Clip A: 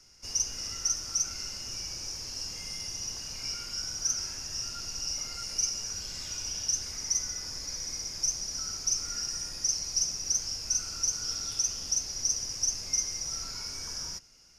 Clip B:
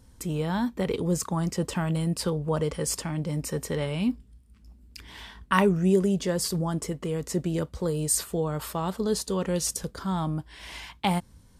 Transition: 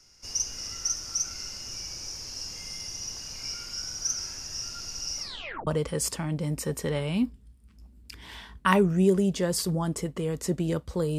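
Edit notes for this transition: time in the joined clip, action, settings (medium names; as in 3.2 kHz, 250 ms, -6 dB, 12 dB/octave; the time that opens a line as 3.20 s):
clip A
5.20 s: tape stop 0.47 s
5.67 s: go over to clip B from 2.53 s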